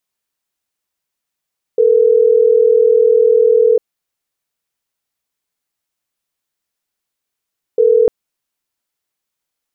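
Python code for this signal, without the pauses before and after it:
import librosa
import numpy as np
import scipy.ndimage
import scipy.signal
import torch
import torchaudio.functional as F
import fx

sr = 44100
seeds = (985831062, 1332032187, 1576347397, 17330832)

y = fx.call_progress(sr, length_s=6.3, kind='ringback tone', level_db=-10.0)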